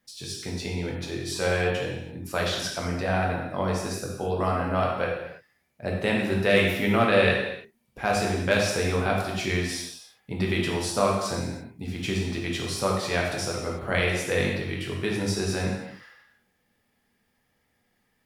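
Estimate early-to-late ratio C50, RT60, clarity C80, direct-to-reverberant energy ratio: 1.5 dB, no single decay rate, 4.0 dB, -2.5 dB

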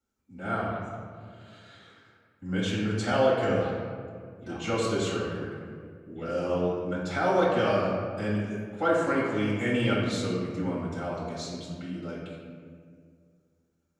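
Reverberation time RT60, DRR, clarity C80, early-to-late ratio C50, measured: 2.1 s, -7.5 dB, 1.5 dB, -0.5 dB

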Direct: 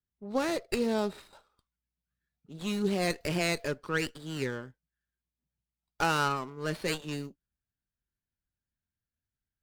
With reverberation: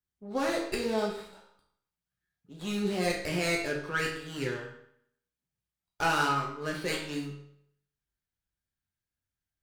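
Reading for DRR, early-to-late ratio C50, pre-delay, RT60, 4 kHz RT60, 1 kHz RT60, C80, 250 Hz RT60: -2.0 dB, 5.0 dB, 7 ms, 0.70 s, 0.60 s, 0.65 s, 8.0 dB, 0.65 s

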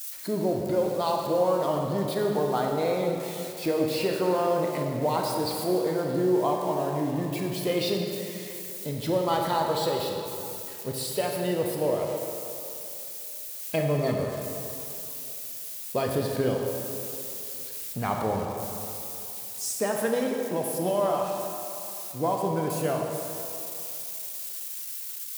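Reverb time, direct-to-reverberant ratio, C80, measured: 2.9 s, 0.5 dB, 3.0 dB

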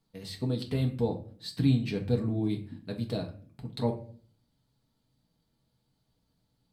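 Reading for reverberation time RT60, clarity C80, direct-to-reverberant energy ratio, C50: 0.45 s, 15.5 dB, 0.5 dB, 11.5 dB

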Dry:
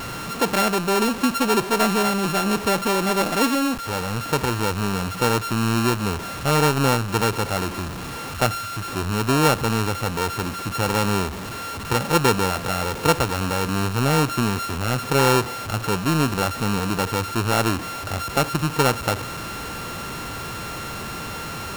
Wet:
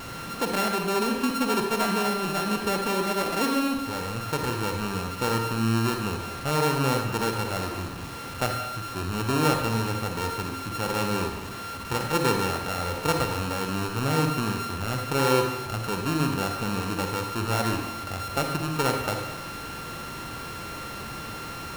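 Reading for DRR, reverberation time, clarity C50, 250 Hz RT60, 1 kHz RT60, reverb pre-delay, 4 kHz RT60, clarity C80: 3.0 dB, 1.1 s, 4.0 dB, 1.1 s, 1.0 s, 40 ms, 0.75 s, 6.5 dB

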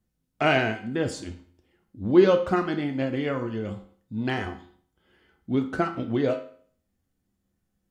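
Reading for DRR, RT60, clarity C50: 4.5 dB, 0.50 s, 10.5 dB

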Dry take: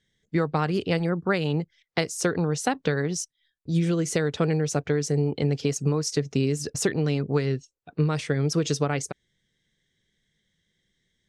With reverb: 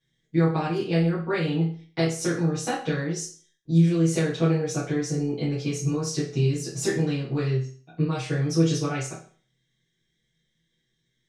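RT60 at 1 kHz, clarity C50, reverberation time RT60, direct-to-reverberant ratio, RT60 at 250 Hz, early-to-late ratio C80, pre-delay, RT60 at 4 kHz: 0.45 s, 5.5 dB, 0.45 s, -10.5 dB, 0.45 s, 11.0 dB, 6 ms, 0.40 s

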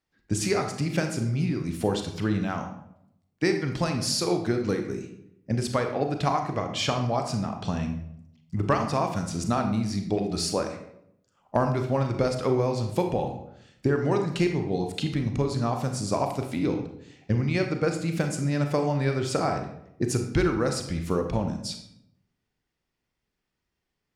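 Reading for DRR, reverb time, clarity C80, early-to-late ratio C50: 4.5 dB, 0.80 s, 10.5 dB, 7.0 dB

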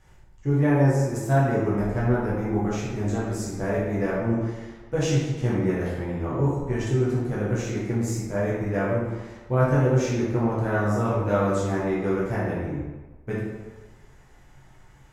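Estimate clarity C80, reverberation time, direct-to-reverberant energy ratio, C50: 2.5 dB, 1.3 s, -8.0 dB, -0.5 dB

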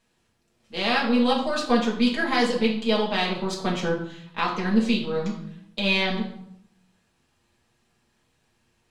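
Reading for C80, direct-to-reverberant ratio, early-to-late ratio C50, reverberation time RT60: 10.0 dB, -4.5 dB, 6.5 dB, 0.70 s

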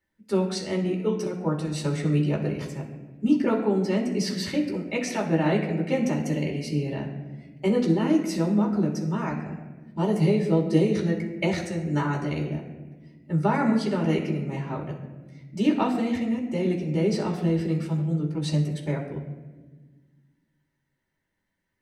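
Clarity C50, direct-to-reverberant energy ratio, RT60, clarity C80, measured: 7.0 dB, -2.0 dB, 1.3 s, 9.0 dB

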